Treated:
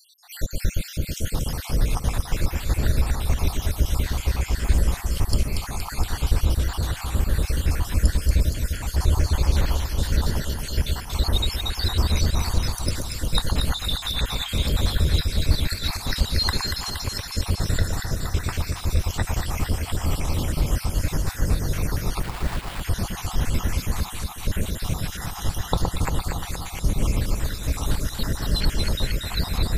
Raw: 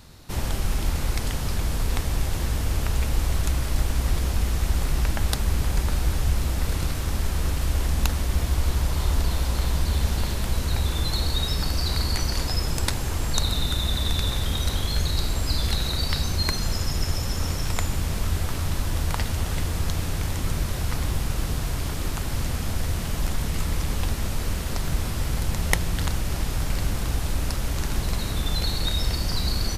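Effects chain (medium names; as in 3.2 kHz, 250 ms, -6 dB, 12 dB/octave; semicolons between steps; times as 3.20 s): random holes in the spectrogram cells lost 75%; echo whose repeats swap between lows and highs 117 ms, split 1.3 kHz, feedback 81%, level -3 dB; 22.23–22.81 s: sample-rate reducer 6.2 kHz, jitter 20%; trim +4.5 dB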